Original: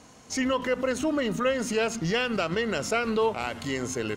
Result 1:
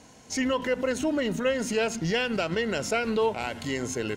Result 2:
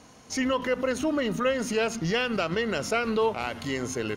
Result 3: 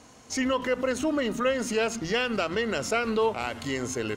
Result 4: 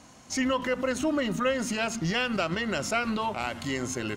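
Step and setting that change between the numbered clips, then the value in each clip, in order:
band-stop, frequency: 1.2 kHz, 7.7 kHz, 170 Hz, 450 Hz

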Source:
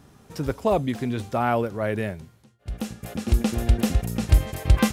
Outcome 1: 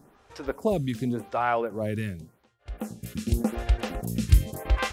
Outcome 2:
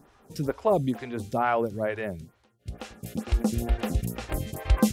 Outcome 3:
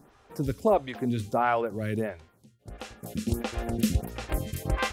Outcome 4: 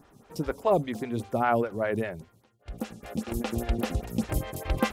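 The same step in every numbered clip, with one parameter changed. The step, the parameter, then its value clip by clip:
lamp-driven phase shifter, rate: 0.88 Hz, 2.2 Hz, 1.5 Hz, 5 Hz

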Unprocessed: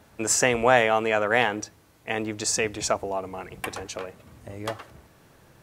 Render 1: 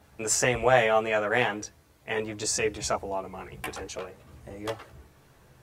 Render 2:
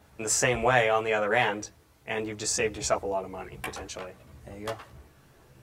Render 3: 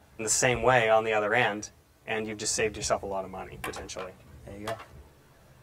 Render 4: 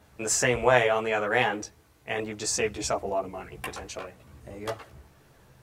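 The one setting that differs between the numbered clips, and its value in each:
chorus, rate: 0.96 Hz, 1.4 Hz, 0.36 Hz, 2.7 Hz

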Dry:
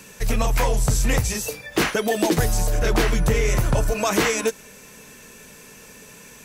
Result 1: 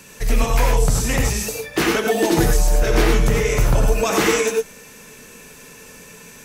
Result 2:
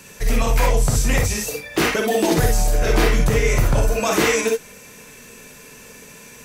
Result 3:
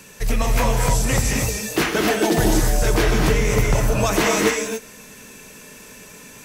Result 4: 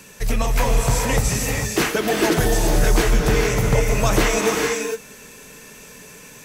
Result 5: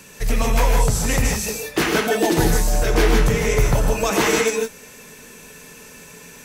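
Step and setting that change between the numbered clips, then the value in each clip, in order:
gated-style reverb, gate: 130 ms, 80 ms, 300 ms, 480 ms, 190 ms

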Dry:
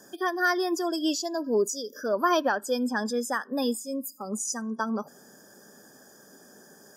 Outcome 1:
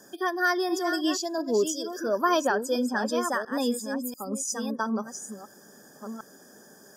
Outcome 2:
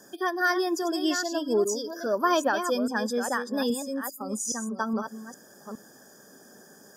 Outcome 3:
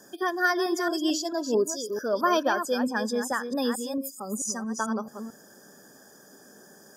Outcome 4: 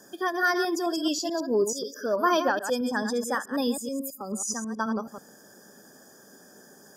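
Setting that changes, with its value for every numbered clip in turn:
chunks repeated in reverse, time: 690 ms, 411 ms, 221 ms, 108 ms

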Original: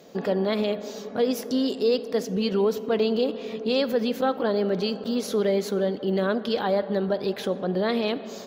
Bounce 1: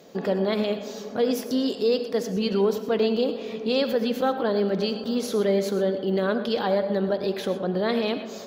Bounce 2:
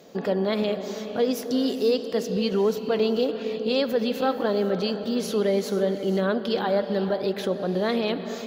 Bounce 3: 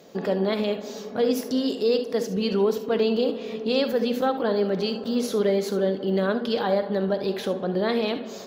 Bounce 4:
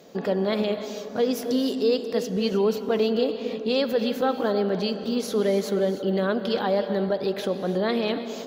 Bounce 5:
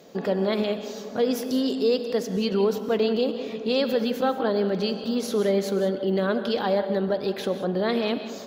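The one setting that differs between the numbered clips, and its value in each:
gated-style reverb, gate: 140 ms, 530 ms, 90 ms, 340 ms, 210 ms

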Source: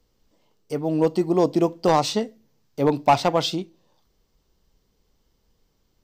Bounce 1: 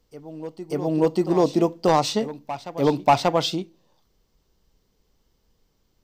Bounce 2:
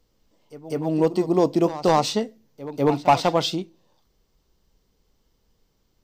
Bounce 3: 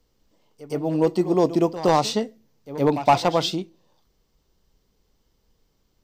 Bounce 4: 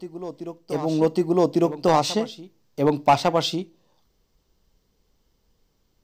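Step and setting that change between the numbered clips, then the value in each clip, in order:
reverse echo, time: 586 ms, 197 ms, 116 ms, 1151 ms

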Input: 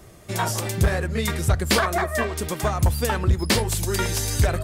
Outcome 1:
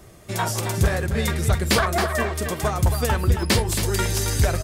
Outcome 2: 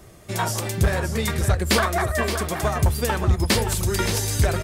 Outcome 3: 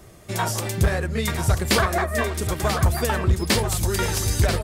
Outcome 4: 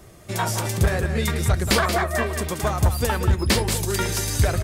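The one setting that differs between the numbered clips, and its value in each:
delay, time: 272 ms, 572 ms, 987 ms, 181 ms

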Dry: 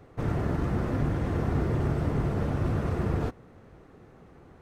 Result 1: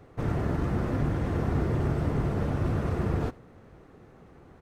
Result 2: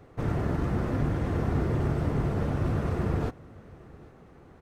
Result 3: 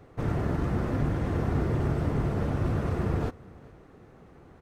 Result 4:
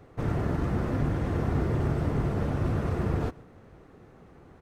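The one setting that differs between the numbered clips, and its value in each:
delay, time: 83 ms, 802 ms, 414 ms, 132 ms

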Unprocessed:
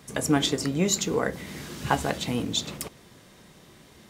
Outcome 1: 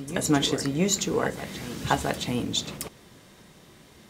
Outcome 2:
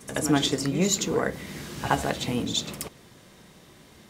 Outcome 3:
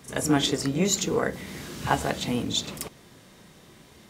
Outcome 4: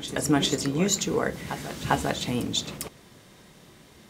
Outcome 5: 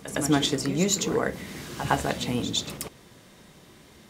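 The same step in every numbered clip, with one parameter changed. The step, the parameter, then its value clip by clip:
reverse echo, time: 670 ms, 72 ms, 37 ms, 400 ms, 110 ms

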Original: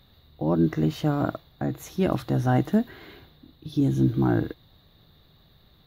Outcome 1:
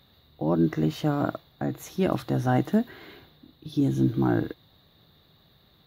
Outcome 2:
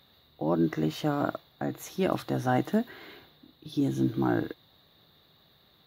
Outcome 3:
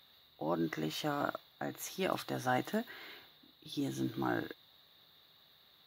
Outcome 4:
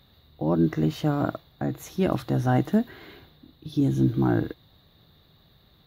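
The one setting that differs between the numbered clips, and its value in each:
high-pass, cutoff frequency: 120 Hz, 330 Hz, 1.3 kHz, 47 Hz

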